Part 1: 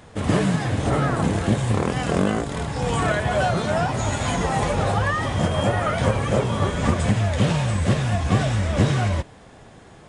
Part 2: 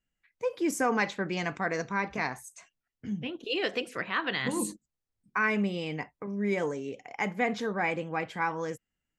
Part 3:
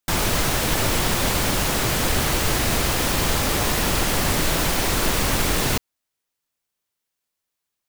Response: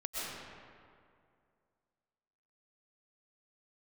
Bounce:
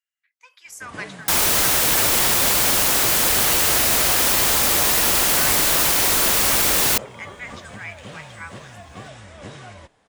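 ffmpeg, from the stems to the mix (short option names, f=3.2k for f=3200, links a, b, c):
-filter_complex "[0:a]adelay=650,volume=-12.5dB[a];[1:a]highpass=f=1.2k:w=0.5412,highpass=f=1.2k:w=1.3066,volume=-2.5dB[b];[2:a]highpass=41,highshelf=f=7.1k:g=9,adelay=1200,volume=2dB[c];[a][b][c]amix=inputs=3:normalize=0,equalizer=f=90:w=0.31:g=-10.5"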